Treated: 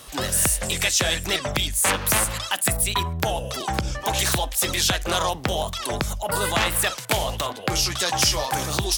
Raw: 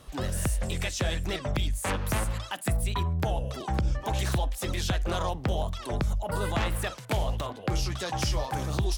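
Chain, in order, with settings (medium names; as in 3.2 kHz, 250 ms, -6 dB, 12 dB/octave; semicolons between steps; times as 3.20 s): tilt EQ +2.5 dB/octave; trim +8 dB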